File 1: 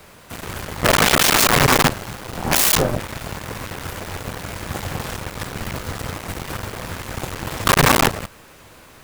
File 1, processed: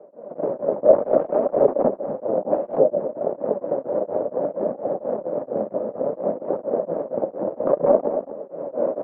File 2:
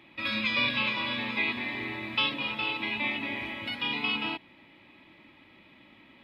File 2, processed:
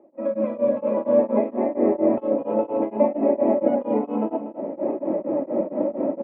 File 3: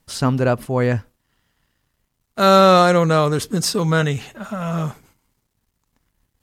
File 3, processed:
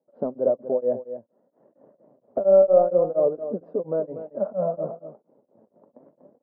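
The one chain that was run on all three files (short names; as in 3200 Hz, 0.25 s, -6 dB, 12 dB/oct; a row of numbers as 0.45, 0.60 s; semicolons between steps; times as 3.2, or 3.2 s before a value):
recorder AGC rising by 33 dB/s; HPF 210 Hz 24 dB/oct; in parallel at -5 dB: wavefolder -9.5 dBFS; on the sum: ladder low-pass 620 Hz, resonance 75%; flange 0.61 Hz, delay 2.2 ms, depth 8.3 ms, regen +60%; on a send: echo 0.242 s -11.5 dB; on the sum: maximiser +7.5 dB; beating tremolo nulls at 4.3 Hz; match loudness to -23 LUFS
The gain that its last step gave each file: +2.0, +7.5, -5.0 dB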